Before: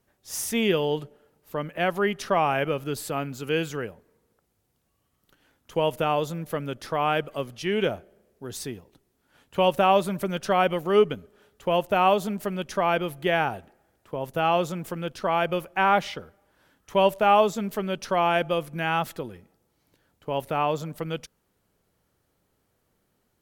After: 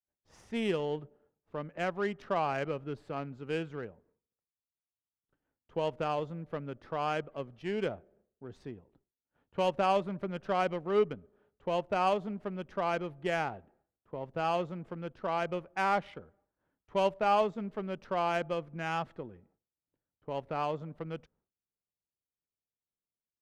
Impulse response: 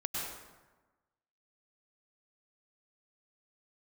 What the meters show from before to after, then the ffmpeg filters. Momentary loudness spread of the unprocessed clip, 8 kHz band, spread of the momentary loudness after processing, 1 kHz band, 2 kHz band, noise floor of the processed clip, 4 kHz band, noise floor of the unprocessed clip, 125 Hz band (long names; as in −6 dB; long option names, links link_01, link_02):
14 LU, below −15 dB, 15 LU, −8.5 dB, −9.5 dB, below −85 dBFS, −11.5 dB, −73 dBFS, −8.0 dB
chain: -af "agate=range=-33dB:threshold=-56dB:ratio=3:detection=peak,adynamicsmooth=sensitivity=1.5:basefreq=1500,volume=-8dB"